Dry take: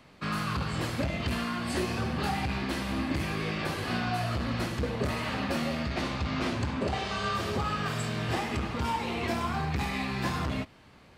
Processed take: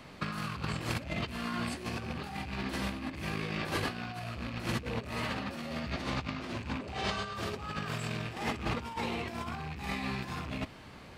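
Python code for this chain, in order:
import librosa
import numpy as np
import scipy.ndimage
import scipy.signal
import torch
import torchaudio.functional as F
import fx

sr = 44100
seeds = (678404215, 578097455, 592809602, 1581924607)

y = fx.rattle_buzz(x, sr, strikes_db=-31.0, level_db=-27.0)
y = fx.over_compress(y, sr, threshold_db=-35.0, ratio=-0.5)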